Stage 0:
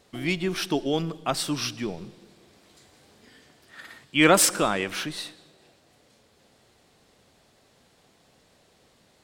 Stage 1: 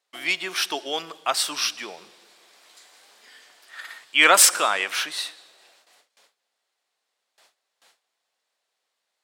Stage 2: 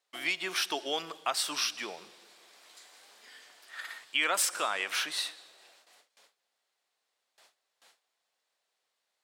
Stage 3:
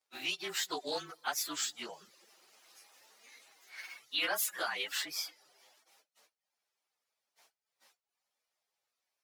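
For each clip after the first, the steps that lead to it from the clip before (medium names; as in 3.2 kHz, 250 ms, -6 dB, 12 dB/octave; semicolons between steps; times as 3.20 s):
gate with hold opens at -49 dBFS; high-pass 850 Hz 12 dB/octave; trim +6 dB
compression 4:1, threshold -24 dBFS, peak gain reduction 12 dB; trim -3 dB
frequency axis rescaled in octaves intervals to 109%; reverb removal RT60 0.53 s; loudspeaker Doppler distortion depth 0.1 ms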